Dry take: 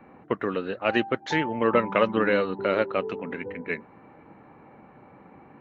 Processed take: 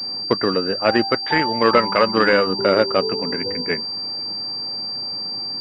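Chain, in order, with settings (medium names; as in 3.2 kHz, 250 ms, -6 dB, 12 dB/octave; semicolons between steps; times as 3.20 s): 1.04–2.47 s: tilt shelf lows -4.5 dB, about 720 Hz; loudness maximiser +10 dB; class-D stage that switches slowly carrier 4.7 kHz; trim -2 dB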